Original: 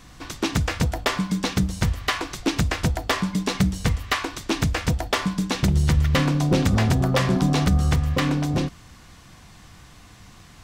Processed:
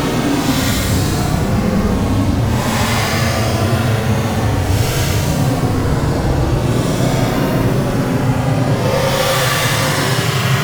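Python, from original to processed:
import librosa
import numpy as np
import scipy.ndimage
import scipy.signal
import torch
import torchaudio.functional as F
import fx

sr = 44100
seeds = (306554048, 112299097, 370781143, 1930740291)

y = fx.fuzz(x, sr, gain_db=42.0, gate_db=-41.0)
y = fx.paulstretch(y, sr, seeds[0], factor=17.0, window_s=0.05, from_s=6.62)
y = y * 10.0 ** (-1.0 / 20.0)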